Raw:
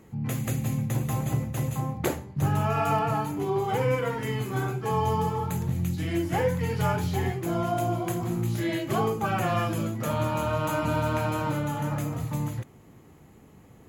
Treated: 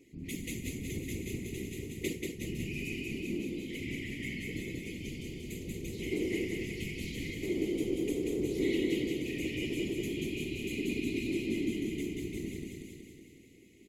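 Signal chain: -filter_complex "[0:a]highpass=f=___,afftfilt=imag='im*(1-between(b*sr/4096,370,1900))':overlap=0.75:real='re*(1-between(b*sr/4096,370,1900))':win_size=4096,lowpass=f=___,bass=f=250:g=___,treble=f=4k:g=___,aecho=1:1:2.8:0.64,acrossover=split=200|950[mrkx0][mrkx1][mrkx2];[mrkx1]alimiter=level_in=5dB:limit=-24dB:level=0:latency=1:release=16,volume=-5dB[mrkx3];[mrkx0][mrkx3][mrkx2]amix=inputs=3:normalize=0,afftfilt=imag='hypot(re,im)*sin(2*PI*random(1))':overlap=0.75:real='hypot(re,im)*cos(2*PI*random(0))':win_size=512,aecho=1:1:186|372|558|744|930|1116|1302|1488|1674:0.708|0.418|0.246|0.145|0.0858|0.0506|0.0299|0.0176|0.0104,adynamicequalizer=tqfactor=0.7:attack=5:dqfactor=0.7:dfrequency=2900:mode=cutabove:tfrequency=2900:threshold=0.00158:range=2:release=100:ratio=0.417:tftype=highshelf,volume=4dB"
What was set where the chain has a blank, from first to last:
130, 11k, -9, -3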